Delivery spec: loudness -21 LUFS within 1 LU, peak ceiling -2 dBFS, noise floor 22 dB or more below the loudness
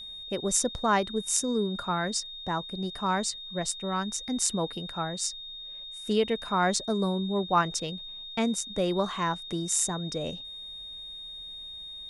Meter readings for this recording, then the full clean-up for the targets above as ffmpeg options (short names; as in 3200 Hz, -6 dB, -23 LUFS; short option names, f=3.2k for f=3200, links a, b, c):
steady tone 3700 Hz; tone level -39 dBFS; loudness -29.5 LUFS; peak -6.0 dBFS; loudness target -21.0 LUFS
-> -af "bandreject=f=3.7k:w=30"
-af "volume=8.5dB,alimiter=limit=-2dB:level=0:latency=1"